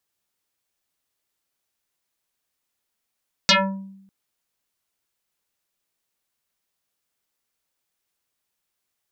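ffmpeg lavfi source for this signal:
ffmpeg -f lavfi -i "aevalsrc='0.316*pow(10,-3*t/0.84)*sin(2*PI*194*t+8*pow(10,-3*t/0.49)*sin(2*PI*3.98*194*t))':duration=0.6:sample_rate=44100" out.wav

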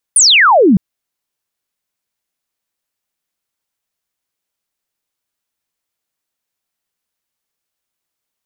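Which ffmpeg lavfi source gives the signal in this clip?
ffmpeg -f lavfi -i "aevalsrc='0.562*clip(t/0.002,0,1)*clip((0.61-t)/0.002,0,1)*sin(2*PI*10000*0.61/log(170/10000)*(exp(log(170/10000)*t/0.61)-1))':duration=0.61:sample_rate=44100" out.wav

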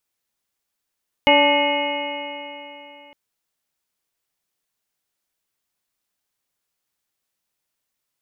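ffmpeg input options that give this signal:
ffmpeg -f lavfi -i "aevalsrc='0.1*pow(10,-3*t/3.23)*sin(2*PI*286.49*t)+0.178*pow(10,-3*t/3.23)*sin(2*PI*575.88*t)+0.168*pow(10,-3*t/3.23)*sin(2*PI*871.03*t)+0.0282*pow(10,-3*t/3.23)*sin(2*PI*1174.7*t)+0.0119*pow(10,-3*t/3.23)*sin(2*PI*1489.54*t)+0.0211*pow(10,-3*t/3.23)*sin(2*PI*1817.99*t)+0.158*pow(10,-3*t/3.23)*sin(2*PI*2162.35*t)+0.0447*pow(10,-3*t/3.23)*sin(2*PI*2524.69*t)+0.126*pow(10,-3*t/3.23)*sin(2*PI*2906.91*t)':duration=1.86:sample_rate=44100" out.wav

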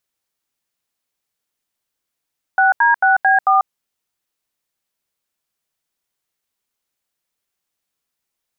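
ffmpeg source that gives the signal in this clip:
ffmpeg -f lavfi -i "aevalsrc='0.237*clip(min(mod(t,0.222),0.142-mod(t,0.222))/0.002,0,1)*(eq(floor(t/0.222),0)*(sin(2*PI*770*mod(t,0.222))+sin(2*PI*1477*mod(t,0.222)))+eq(floor(t/0.222),1)*(sin(2*PI*941*mod(t,0.222))+sin(2*PI*1633*mod(t,0.222)))+eq(floor(t/0.222),2)*(sin(2*PI*770*mod(t,0.222))+sin(2*PI*1477*mod(t,0.222)))+eq(floor(t/0.222),3)*(sin(2*PI*770*mod(t,0.222))+sin(2*PI*1633*mod(t,0.222)))+eq(floor(t/0.222),4)*(sin(2*PI*770*mod(t,0.222))+sin(2*PI*1209*mod(t,0.222))))':duration=1.11:sample_rate=44100" out.wav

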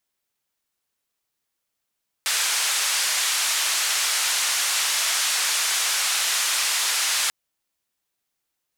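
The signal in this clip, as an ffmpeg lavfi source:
ffmpeg -f lavfi -i "anoisesrc=color=white:duration=5.04:sample_rate=44100:seed=1,highpass=frequency=1100,lowpass=frequency=8700,volume=-13.6dB" out.wav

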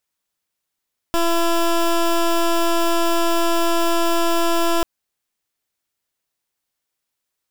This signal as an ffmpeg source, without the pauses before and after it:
ffmpeg -f lavfi -i "aevalsrc='0.141*(2*lt(mod(337*t,1),0.16)-1)':duration=3.69:sample_rate=44100" out.wav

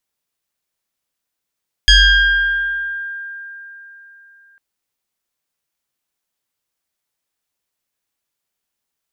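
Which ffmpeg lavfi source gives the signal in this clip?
ffmpeg -f lavfi -i "aevalsrc='0.596*pow(10,-3*t/3.71)*sin(2*PI*1600*t+2.2*pow(10,-3*t/1.96)*sin(2*PI*1.03*1600*t))':duration=2.7:sample_rate=44100" out.wav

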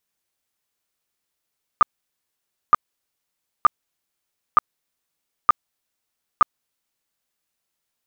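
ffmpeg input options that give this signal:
ffmpeg -f lavfi -i "aevalsrc='0.422*sin(2*PI*1210*mod(t,0.92))*lt(mod(t,0.92),20/1210)':duration=5.52:sample_rate=44100" out.wav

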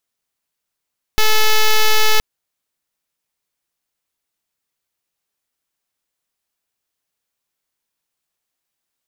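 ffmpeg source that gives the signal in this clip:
ffmpeg -f lavfi -i "aevalsrc='0.299*(2*lt(mod(433*t,1),0.05)-1)':duration=1.02:sample_rate=44100" out.wav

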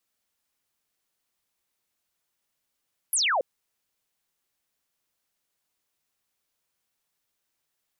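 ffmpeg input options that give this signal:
ffmpeg -f lavfi -i "aevalsrc='0.0891*clip(t/0.002,0,1)*clip((0.28-t)/0.002,0,1)*sin(2*PI*12000*0.28/log(480/12000)*(exp(log(480/12000)*t/0.28)-1))':duration=0.28:sample_rate=44100" out.wav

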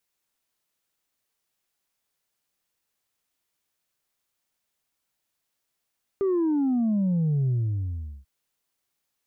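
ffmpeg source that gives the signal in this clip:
ffmpeg -f lavfi -i "aevalsrc='0.0891*clip((2.04-t)/0.76,0,1)*tanh(1.19*sin(2*PI*400*2.04/log(65/400)*(exp(log(65/400)*t/2.04)-1)))/tanh(1.19)':duration=2.04:sample_rate=44100" out.wav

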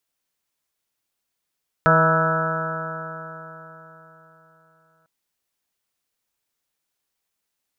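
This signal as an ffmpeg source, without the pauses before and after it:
ffmpeg -f lavfi -i "aevalsrc='0.119*pow(10,-3*t/3.86)*sin(2*PI*160.06*t)+0.0335*pow(10,-3*t/3.86)*sin(2*PI*320.5*t)+0.0708*pow(10,-3*t/3.86)*sin(2*PI*481.68*t)+0.119*pow(10,-3*t/3.86)*sin(2*PI*643.98*t)+0.0299*pow(10,-3*t/3.86)*sin(2*PI*807.76*t)+0.0668*pow(10,-3*t/3.86)*sin(2*PI*973.39*t)+0.0251*pow(10,-3*t/3.86)*sin(2*PI*1141.2*t)+0.168*pow(10,-3*t/3.86)*sin(2*PI*1311.56*t)+0.0944*pow(10,-3*t/3.86)*sin(2*PI*1484.79*t)+0.0473*pow(10,-3*t/3.86)*sin(2*PI*1661.23*t)':duration=3.2:sample_rate=44100" out.wav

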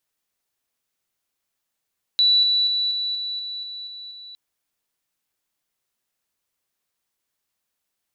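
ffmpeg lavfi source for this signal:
ffmpeg -f lavfi -i "aevalsrc='pow(10,(-13.5-3*floor(t/0.24))/20)*sin(2*PI*3950*t)':duration=2.16:sample_rate=44100" out.wav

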